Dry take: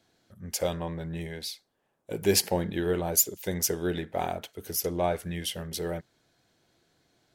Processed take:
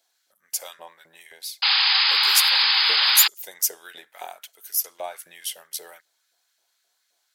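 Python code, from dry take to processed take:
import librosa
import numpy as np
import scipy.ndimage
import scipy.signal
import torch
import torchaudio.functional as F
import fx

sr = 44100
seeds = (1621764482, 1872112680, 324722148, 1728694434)

y = fx.filter_lfo_highpass(x, sr, shape='saw_up', hz=3.8, low_hz=570.0, high_hz=1700.0, q=1.6)
y = fx.spec_paint(y, sr, seeds[0], shape='noise', start_s=1.62, length_s=1.66, low_hz=760.0, high_hz=5100.0, level_db=-17.0)
y = scipy.signal.lfilter([1.0, -0.8], [1.0], y)
y = F.gain(torch.from_numpy(y), 5.0).numpy()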